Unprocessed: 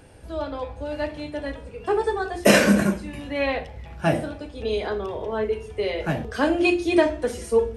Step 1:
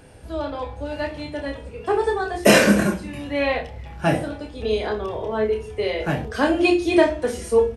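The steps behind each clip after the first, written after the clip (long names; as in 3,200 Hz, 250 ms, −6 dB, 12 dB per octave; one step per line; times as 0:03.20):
double-tracking delay 28 ms −6 dB
level +1.5 dB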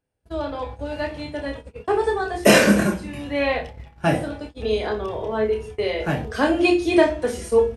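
noise gate −34 dBFS, range −34 dB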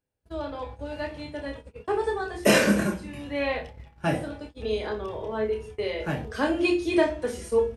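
notch filter 710 Hz, Q 15
level −5.5 dB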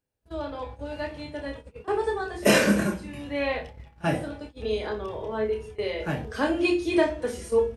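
echo ahead of the sound 35 ms −23.5 dB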